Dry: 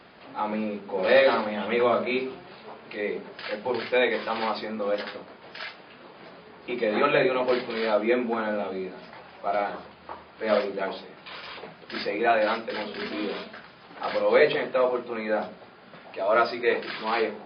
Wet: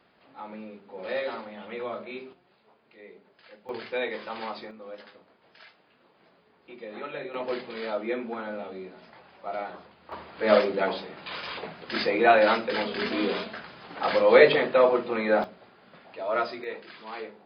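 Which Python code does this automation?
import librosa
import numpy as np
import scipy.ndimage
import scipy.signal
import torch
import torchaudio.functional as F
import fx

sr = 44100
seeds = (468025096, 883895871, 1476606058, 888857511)

y = fx.gain(x, sr, db=fx.steps((0.0, -12.0), (2.33, -19.0), (3.69, -7.5), (4.71, -15.0), (7.34, -7.0), (10.12, 3.5), (15.44, -5.5), (16.64, -12.5)))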